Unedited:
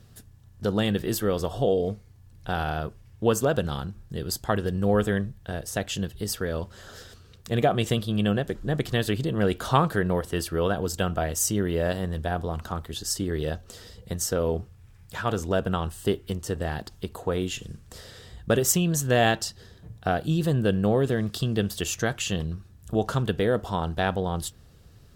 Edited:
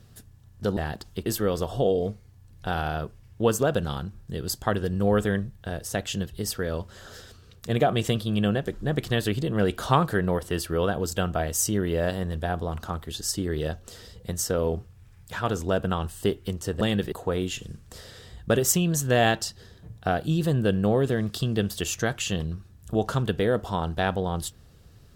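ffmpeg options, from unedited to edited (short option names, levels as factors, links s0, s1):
-filter_complex "[0:a]asplit=5[s0][s1][s2][s3][s4];[s0]atrim=end=0.772[s5];[s1]atrim=start=16.628:end=17.122[s6];[s2]atrim=start=1.078:end=16.632[s7];[s3]atrim=start=0.768:end=1.082[s8];[s4]atrim=start=17.118[s9];[s5][s6]acrossfade=d=0.004:c1=hsin:c2=hsin[s10];[s10][s7]acrossfade=d=0.004:c1=hsin:c2=hsin[s11];[s11][s8]acrossfade=d=0.004:c1=hsin:c2=hsin[s12];[s12][s9]acrossfade=d=0.004:c1=hsin:c2=hsin"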